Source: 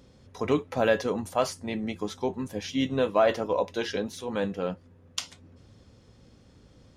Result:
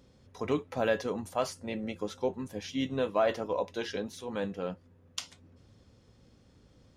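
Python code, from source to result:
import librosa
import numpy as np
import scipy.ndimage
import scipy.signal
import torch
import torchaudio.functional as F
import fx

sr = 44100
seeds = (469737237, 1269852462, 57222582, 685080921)

y = fx.small_body(x, sr, hz=(530.0, 1400.0, 2700.0), ring_ms=45, db=10, at=(1.55, 2.34))
y = F.gain(torch.from_numpy(y), -5.0).numpy()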